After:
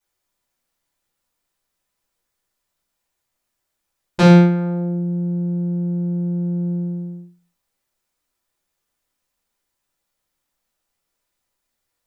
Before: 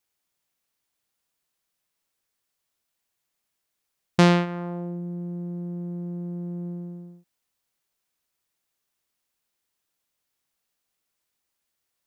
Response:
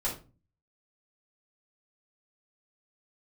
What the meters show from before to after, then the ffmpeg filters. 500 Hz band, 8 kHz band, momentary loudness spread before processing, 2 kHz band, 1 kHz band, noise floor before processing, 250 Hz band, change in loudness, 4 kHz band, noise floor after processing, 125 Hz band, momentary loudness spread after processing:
+7.0 dB, can't be measured, 16 LU, +3.0 dB, +3.5 dB, −81 dBFS, +9.5 dB, +8.5 dB, +1.5 dB, −78 dBFS, +10.0 dB, 15 LU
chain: -filter_complex "[1:a]atrim=start_sample=2205,afade=type=out:start_time=0.38:duration=0.01,atrim=end_sample=17199[link_01];[0:a][link_01]afir=irnorm=-1:irlink=0,volume=-1.5dB"

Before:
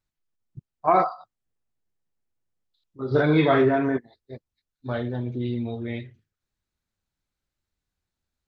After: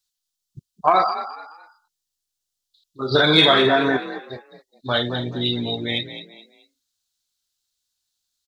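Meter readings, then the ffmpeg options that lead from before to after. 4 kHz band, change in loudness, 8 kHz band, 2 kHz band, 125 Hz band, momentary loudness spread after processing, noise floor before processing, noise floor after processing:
+22.5 dB, +5.0 dB, can't be measured, +9.0 dB, −0.5 dB, 21 LU, below −85 dBFS, −82 dBFS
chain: -filter_complex "[0:a]afftdn=noise_reduction=14:noise_floor=-47,equalizer=frequency=1900:width=0.34:gain=12.5,acompressor=threshold=-13dB:ratio=4,aexciter=amount=9.2:drive=6.7:freq=3300,asplit=4[link_01][link_02][link_03][link_04];[link_02]adelay=213,afreqshift=50,volume=-12dB[link_05];[link_03]adelay=426,afreqshift=100,volume=-21.9dB[link_06];[link_04]adelay=639,afreqshift=150,volume=-31.8dB[link_07];[link_01][link_05][link_06][link_07]amix=inputs=4:normalize=0"

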